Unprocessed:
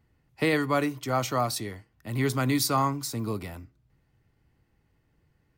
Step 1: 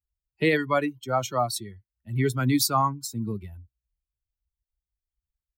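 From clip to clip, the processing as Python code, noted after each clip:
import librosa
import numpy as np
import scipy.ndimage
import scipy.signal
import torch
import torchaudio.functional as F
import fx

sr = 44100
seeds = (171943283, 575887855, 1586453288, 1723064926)

y = fx.bin_expand(x, sr, power=2.0)
y = y * 10.0 ** (5.0 / 20.0)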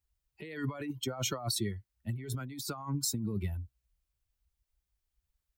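y = fx.over_compress(x, sr, threshold_db=-35.0, ratio=-1.0)
y = y * 10.0 ** (-2.0 / 20.0)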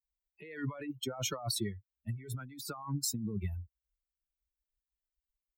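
y = fx.bin_expand(x, sr, power=1.5)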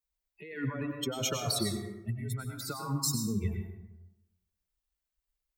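y = fx.rev_plate(x, sr, seeds[0], rt60_s=1.0, hf_ratio=0.5, predelay_ms=85, drr_db=3.5)
y = y * 10.0 ** (3.0 / 20.0)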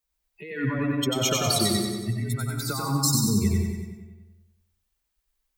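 y = fx.echo_feedback(x, sr, ms=93, feedback_pct=56, wet_db=-3.0)
y = y * 10.0 ** (6.5 / 20.0)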